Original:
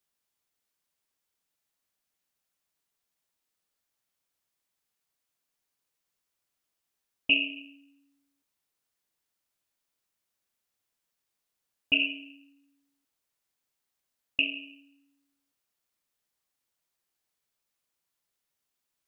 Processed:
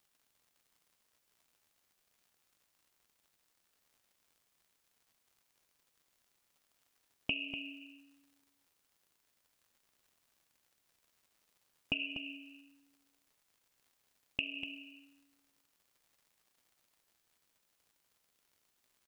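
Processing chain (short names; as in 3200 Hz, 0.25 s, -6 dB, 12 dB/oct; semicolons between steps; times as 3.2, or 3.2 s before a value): compressor 12:1, threshold -37 dBFS, peak gain reduction 19.5 dB; crackle 130/s -63 dBFS; on a send: echo 0.244 s -9.5 dB; on the sum: gain +4 dB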